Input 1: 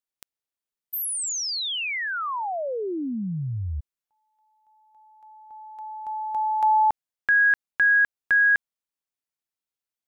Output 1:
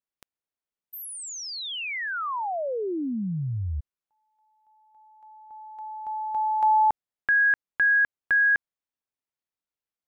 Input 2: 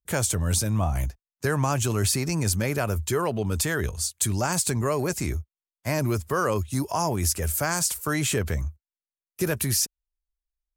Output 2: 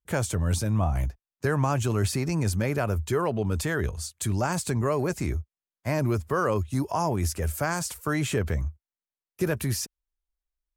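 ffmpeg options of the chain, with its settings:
ffmpeg -i in.wav -af "highshelf=frequency=3400:gain=-10" out.wav

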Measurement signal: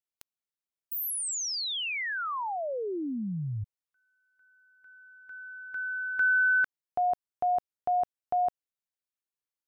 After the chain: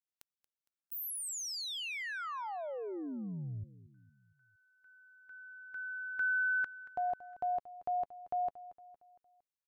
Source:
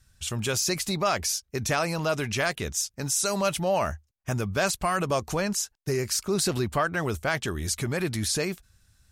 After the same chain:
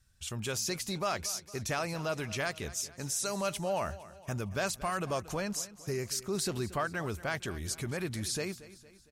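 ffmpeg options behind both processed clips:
ffmpeg -i in.wav -af "aecho=1:1:230|460|690|920:0.141|0.0692|0.0339|0.0166,volume=-7.5dB" out.wav

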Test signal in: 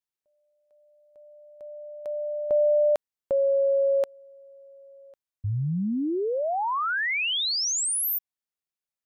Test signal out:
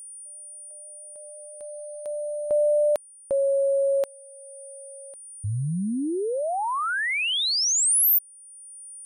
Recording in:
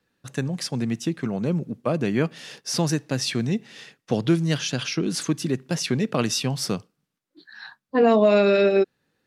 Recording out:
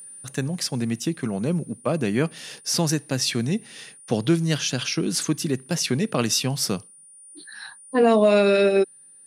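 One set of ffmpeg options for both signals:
ffmpeg -i in.wav -af "aeval=exprs='val(0)+0.00224*sin(2*PI*9300*n/s)':channel_layout=same,acompressor=mode=upward:threshold=-29dB:ratio=1.5:attack=0.22:release=707:knee=2.83:detection=peak,crystalizer=i=1:c=0" out.wav

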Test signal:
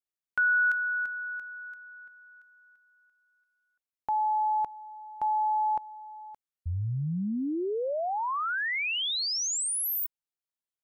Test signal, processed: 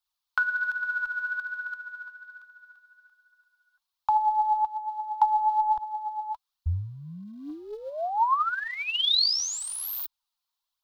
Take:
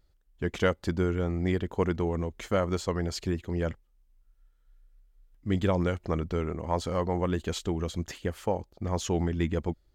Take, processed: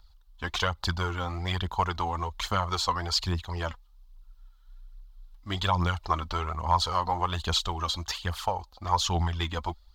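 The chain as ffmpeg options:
ffmpeg -i in.wav -filter_complex "[0:a]aphaser=in_gain=1:out_gain=1:delay=4.1:decay=0.5:speed=1.2:type=triangular,acrossover=split=5900[link_01][link_02];[link_02]acompressor=threshold=-36dB:ratio=4:attack=1:release=60[link_03];[link_01][link_03]amix=inputs=2:normalize=0,equalizer=frequency=350:width_type=o:width=0.99:gain=-6.5,acrossover=split=340[link_04][link_05];[link_05]acompressor=threshold=-37dB:ratio=5:attack=93:release=222:knee=2.83:detection=peak[link_06];[link_04][link_06]amix=inputs=2:normalize=0,equalizer=frequency=125:width_type=o:width=1:gain=-12,equalizer=frequency=250:width_type=o:width=1:gain=-10,equalizer=frequency=500:width_type=o:width=1:gain=-10,equalizer=frequency=1000:width_type=o:width=1:gain=11,equalizer=frequency=2000:width_type=o:width=1:gain=-9,equalizer=frequency=4000:width_type=o:width=1:gain=10,equalizer=frequency=8000:width_type=o:width=1:gain=-5,volume=6.5dB" out.wav

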